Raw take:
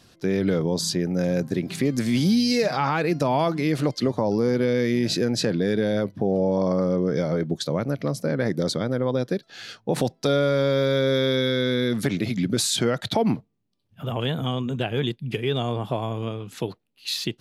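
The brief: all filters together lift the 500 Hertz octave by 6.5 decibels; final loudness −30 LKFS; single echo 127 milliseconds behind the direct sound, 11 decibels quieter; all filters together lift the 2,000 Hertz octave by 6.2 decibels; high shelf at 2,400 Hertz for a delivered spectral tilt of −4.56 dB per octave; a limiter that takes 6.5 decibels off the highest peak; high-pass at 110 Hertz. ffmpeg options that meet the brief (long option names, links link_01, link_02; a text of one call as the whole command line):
ffmpeg -i in.wav -af "highpass=110,equalizer=frequency=500:width_type=o:gain=7,equalizer=frequency=2000:width_type=o:gain=5,highshelf=frequency=2400:gain=5,alimiter=limit=-11.5dB:level=0:latency=1,aecho=1:1:127:0.282,volume=-8.5dB" out.wav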